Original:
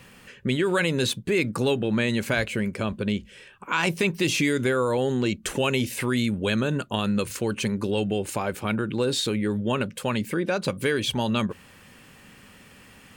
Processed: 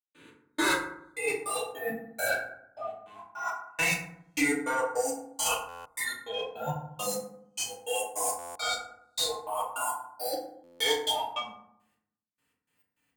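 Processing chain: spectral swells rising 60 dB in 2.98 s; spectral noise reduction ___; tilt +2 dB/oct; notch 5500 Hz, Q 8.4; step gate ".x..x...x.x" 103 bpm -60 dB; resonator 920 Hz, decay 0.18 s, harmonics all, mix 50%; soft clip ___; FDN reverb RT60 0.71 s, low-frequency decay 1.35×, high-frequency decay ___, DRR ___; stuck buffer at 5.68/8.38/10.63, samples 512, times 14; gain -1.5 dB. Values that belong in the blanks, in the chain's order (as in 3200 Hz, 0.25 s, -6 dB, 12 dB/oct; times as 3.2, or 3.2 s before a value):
30 dB, -25 dBFS, 0.45×, -6 dB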